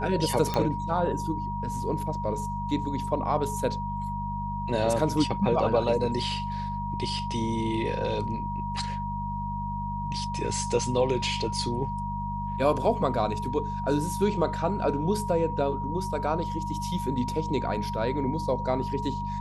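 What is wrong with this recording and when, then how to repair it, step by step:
hum 50 Hz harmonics 4 -34 dBFS
whine 950 Hz -32 dBFS
0.54 s: pop -13 dBFS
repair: de-click; de-hum 50 Hz, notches 4; band-stop 950 Hz, Q 30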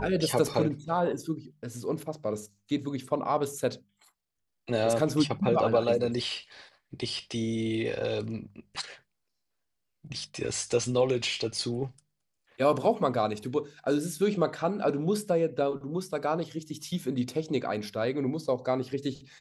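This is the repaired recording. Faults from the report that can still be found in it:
nothing left

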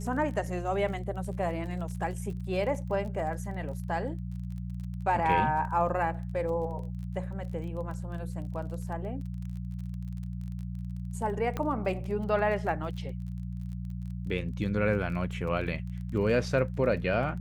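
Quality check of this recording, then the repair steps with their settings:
crackle 28 per s -39 dBFS
hum 60 Hz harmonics 3 -36 dBFS
11.57 s: pop -19 dBFS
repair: de-click; de-hum 60 Hz, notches 3

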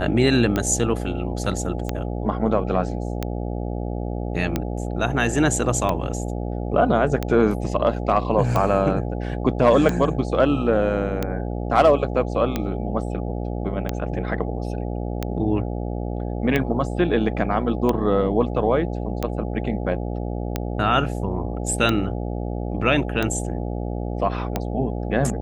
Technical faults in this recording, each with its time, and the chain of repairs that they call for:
buzz 60 Hz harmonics 14 -27 dBFS
tick 45 rpm -9 dBFS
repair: de-click; de-hum 60 Hz, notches 14

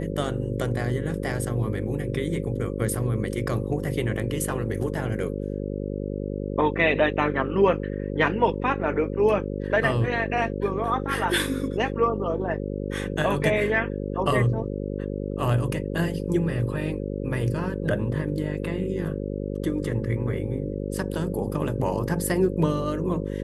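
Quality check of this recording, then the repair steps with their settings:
buzz 50 Hz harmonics 11 -30 dBFS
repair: de-hum 50 Hz, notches 11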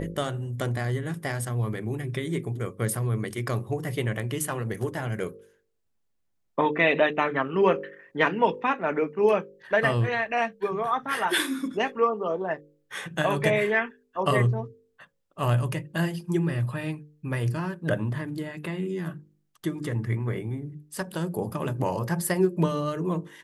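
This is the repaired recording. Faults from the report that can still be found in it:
nothing left

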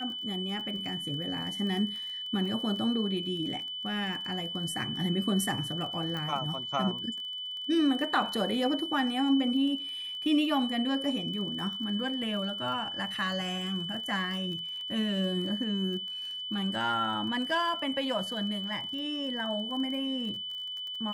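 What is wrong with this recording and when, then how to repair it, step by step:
crackle 27 per s -38 dBFS
whine 3 kHz -35 dBFS
6.17 s: pop -23 dBFS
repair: de-click; band-stop 3 kHz, Q 30

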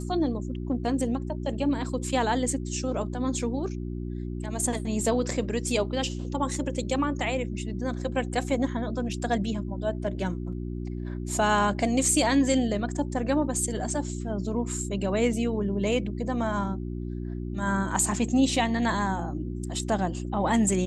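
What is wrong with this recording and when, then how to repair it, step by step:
hum 60 Hz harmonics 6 -33 dBFS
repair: de-hum 60 Hz, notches 6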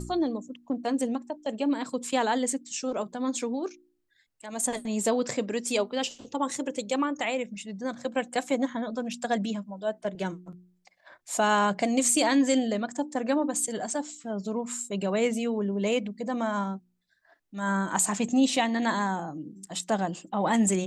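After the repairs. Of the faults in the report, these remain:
nothing left

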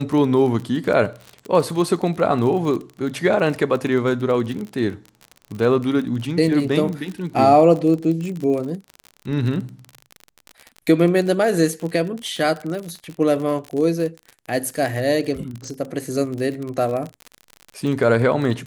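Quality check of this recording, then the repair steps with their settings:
crackle 38 per s -26 dBFS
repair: de-click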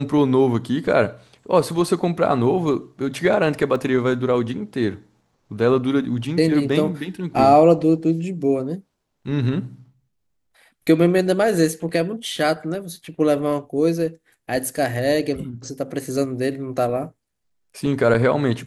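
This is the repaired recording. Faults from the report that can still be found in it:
nothing left

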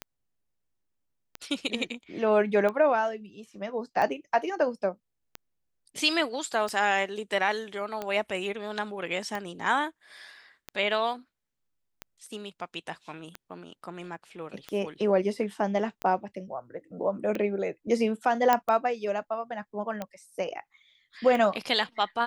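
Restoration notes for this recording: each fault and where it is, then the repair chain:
tick 45 rpm -19 dBFS
18.53 s: pop -9 dBFS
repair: de-click

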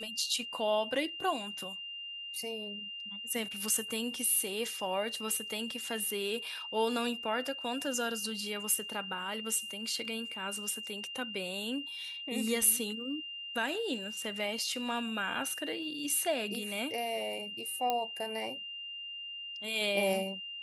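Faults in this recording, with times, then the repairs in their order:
whine 2.8 kHz -40 dBFS
17.90 s: pop -17 dBFS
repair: de-click; band-stop 2.8 kHz, Q 30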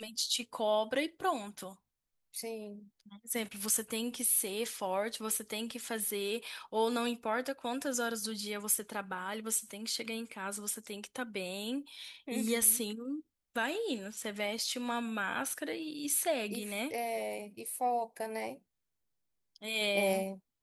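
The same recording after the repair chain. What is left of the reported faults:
nothing left

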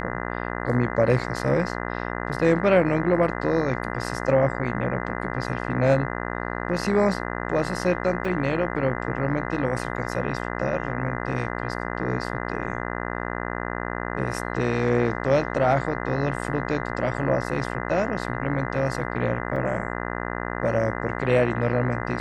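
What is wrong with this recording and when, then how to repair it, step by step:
buzz 60 Hz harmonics 34 -30 dBFS
8.25 s: dropout 3.4 ms
19.56 s: dropout 3.3 ms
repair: de-hum 60 Hz, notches 34; interpolate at 8.25 s, 3.4 ms; interpolate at 19.56 s, 3.3 ms

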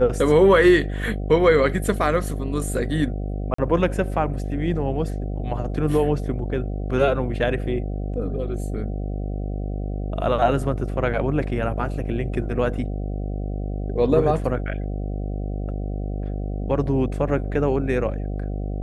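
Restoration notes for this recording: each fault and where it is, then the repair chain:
buzz 50 Hz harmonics 15 -27 dBFS
3.54–3.58 s: dropout 44 ms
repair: de-hum 50 Hz, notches 15; interpolate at 3.54 s, 44 ms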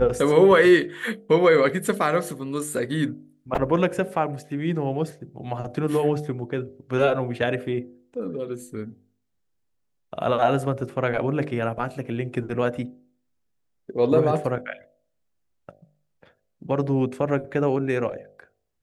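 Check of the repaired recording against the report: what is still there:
nothing left

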